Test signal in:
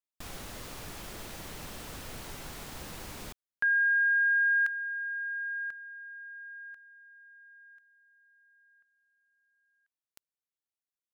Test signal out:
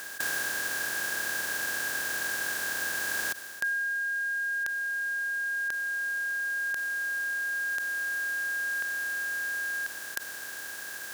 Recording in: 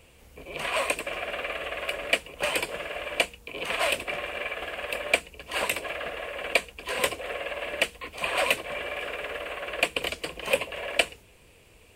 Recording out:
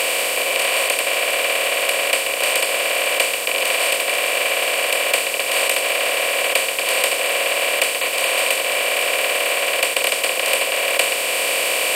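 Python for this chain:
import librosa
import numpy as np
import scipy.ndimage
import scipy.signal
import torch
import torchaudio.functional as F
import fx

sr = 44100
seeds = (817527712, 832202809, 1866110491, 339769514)

y = fx.bin_compress(x, sr, power=0.2)
y = scipy.signal.sosfilt(scipy.signal.butter(2, 77.0, 'highpass', fs=sr, output='sos'), y)
y = fx.bass_treble(y, sr, bass_db=-14, treble_db=8)
y = fx.rider(y, sr, range_db=4, speed_s=0.5)
y = y * 10.0 ** (-2.0 / 20.0)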